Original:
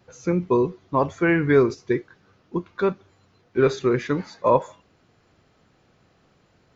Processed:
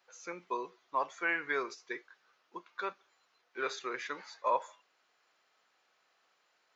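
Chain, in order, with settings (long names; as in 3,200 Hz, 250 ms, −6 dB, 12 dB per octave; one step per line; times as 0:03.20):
high-pass filter 930 Hz 12 dB per octave
level −6 dB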